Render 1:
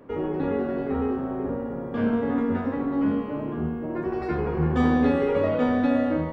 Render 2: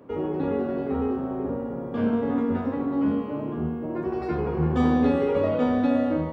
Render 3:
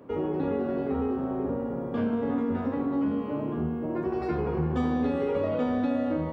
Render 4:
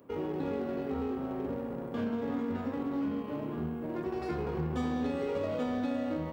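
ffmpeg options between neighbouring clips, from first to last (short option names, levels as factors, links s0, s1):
-af "highpass=52,equalizer=f=1800:t=o:w=0.72:g=-5"
-af "acompressor=threshold=0.0631:ratio=4"
-filter_complex "[0:a]crystalizer=i=2.5:c=0,asplit=2[s0][s1];[s1]acrusher=bits=4:mix=0:aa=0.5,volume=0.282[s2];[s0][s2]amix=inputs=2:normalize=0,volume=0.398"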